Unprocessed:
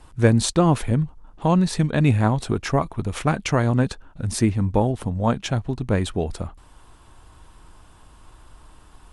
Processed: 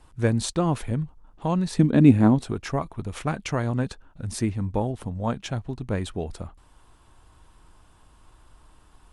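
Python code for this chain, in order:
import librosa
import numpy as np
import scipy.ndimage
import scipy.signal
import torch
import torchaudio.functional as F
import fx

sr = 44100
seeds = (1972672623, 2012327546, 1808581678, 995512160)

y = fx.peak_eq(x, sr, hz=270.0, db=15.0, octaves=1.3, at=(1.79, 2.42))
y = y * 10.0 ** (-6.0 / 20.0)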